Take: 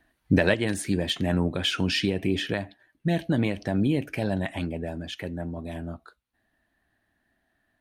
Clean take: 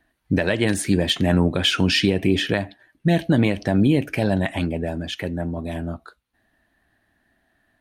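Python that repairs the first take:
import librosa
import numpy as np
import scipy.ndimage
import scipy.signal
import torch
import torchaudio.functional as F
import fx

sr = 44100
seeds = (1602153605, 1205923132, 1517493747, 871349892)

y = fx.fix_level(x, sr, at_s=0.54, step_db=6.5)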